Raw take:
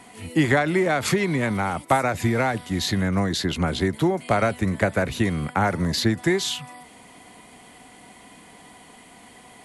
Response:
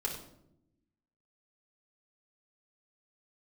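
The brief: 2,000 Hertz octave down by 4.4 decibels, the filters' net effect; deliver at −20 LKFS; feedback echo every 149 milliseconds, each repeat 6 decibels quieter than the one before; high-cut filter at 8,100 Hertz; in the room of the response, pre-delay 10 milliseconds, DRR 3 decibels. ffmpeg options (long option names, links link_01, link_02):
-filter_complex "[0:a]lowpass=8100,equalizer=frequency=2000:width_type=o:gain=-5.5,aecho=1:1:149|298|447|596|745|894:0.501|0.251|0.125|0.0626|0.0313|0.0157,asplit=2[link_01][link_02];[1:a]atrim=start_sample=2205,adelay=10[link_03];[link_02][link_03]afir=irnorm=-1:irlink=0,volume=-6dB[link_04];[link_01][link_04]amix=inputs=2:normalize=0,volume=0.5dB"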